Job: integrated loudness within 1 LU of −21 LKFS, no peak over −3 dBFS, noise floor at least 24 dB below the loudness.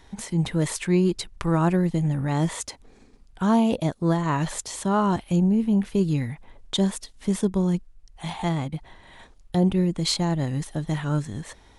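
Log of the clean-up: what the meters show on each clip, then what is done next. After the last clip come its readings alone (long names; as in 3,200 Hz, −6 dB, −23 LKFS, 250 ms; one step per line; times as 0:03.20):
integrated loudness −24.5 LKFS; sample peak −9.0 dBFS; target loudness −21.0 LKFS
→ level +3.5 dB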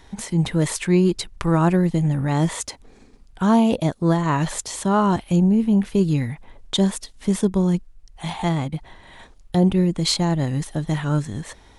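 integrated loudness −21.0 LKFS; sample peak −5.5 dBFS; background noise floor −50 dBFS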